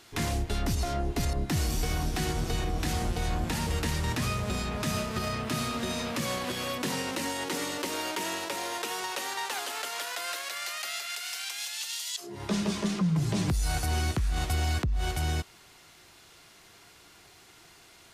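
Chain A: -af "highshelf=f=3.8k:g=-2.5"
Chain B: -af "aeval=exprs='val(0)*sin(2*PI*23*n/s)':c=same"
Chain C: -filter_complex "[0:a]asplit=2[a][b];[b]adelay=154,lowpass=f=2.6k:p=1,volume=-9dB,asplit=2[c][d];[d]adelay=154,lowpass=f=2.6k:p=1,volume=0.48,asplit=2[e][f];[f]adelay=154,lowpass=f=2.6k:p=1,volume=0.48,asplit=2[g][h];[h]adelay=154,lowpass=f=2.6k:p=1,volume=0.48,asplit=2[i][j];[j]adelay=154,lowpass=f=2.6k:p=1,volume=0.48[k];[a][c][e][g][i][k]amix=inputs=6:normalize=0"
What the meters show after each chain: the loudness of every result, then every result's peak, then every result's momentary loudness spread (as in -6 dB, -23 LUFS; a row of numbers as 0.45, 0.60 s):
-31.5, -34.0, -30.5 LUFS; -18.5, -19.0, -16.5 dBFS; 5, 4, 5 LU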